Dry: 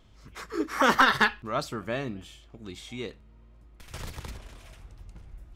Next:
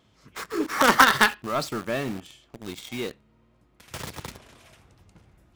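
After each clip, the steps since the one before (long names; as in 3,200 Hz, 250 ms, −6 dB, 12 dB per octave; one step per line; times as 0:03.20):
high-pass filter 120 Hz 12 dB per octave
in parallel at −9 dB: log-companded quantiser 2 bits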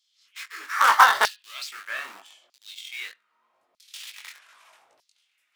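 chorus effect 2.2 Hz, delay 18.5 ms, depth 3.9 ms
auto-filter high-pass saw down 0.8 Hz 580–4,900 Hz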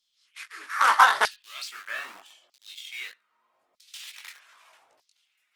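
level −1.5 dB
Opus 24 kbit/s 48,000 Hz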